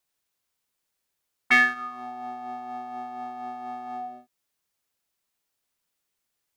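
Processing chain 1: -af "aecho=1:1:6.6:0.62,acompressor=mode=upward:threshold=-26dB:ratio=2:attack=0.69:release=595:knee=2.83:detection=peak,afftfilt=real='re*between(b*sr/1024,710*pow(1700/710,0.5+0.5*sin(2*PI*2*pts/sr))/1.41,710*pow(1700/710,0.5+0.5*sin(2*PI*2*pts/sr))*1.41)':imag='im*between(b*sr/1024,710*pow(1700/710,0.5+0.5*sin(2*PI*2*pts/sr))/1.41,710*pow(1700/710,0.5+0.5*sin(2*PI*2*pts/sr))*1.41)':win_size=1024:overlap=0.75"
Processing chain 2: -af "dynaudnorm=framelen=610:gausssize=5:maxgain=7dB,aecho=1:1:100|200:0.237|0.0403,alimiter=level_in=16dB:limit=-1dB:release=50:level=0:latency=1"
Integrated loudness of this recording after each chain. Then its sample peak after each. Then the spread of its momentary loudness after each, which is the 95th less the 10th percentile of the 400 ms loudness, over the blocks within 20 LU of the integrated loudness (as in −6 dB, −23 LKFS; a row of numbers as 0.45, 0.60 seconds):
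−31.0, −13.5 LKFS; −10.5, −1.0 dBFS; 14, 6 LU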